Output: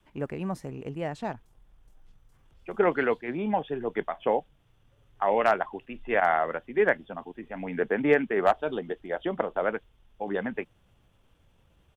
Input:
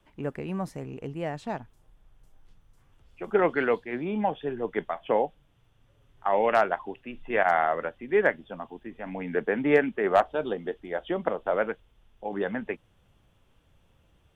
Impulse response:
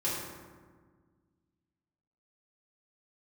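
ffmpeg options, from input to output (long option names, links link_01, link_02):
-af "adynamicequalizer=threshold=0.01:dfrequency=550:dqfactor=4.3:tfrequency=550:tqfactor=4.3:attack=5:release=100:ratio=0.375:range=1.5:mode=cutabove:tftype=bell,atempo=1.2"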